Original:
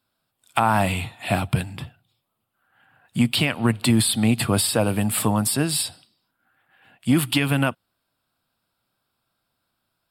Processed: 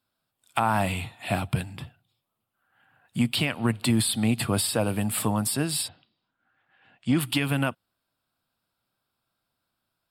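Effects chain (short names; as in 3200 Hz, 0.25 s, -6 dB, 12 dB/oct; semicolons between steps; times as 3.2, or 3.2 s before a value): 5.87–7.19 LPF 3100 Hz -> 7600 Hz 24 dB/oct; gain -4.5 dB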